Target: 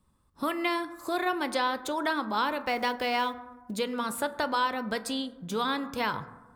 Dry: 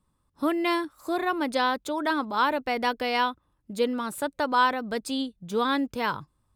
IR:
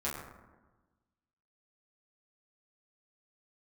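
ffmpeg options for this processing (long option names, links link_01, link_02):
-filter_complex "[0:a]acrossover=split=700|2000[link_01][link_02][link_03];[link_01]acompressor=threshold=-36dB:ratio=4[link_04];[link_02]acompressor=threshold=-33dB:ratio=4[link_05];[link_03]acompressor=threshold=-37dB:ratio=4[link_06];[link_04][link_05][link_06]amix=inputs=3:normalize=0,asettb=1/sr,asplit=3[link_07][link_08][link_09];[link_07]atrim=end=2.604[link_10];[link_08]atrim=start=2.6:end=3.71,asetpts=PTS-STARTPTS,afade=type=in:duration=0.004:curve=qsin,afade=type=out:start_time=1.106:duration=0.004:curve=qsin,acrusher=bits=7:mode=log:mix=0:aa=0.000001[link_11];[link_09]atrim=start=3.706[link_12];[link_10][link_11]acrossfade=duration=0.004:curve1=hsin:curve2=qsin[link_13];[link_13][link_12]acrossfade=duration=0.004:curve1=qsin:curve2=hsin,asplit=2[link_14][link_15];[1:a]atrim=start_sample=2205[link_16];[link_15][link_16]afir=irnorm=-1:irlink=0,volume=-13.5dB[link_17];[link_14][link_17]amix=inputs=2:normalize=0,volume=1.5dB"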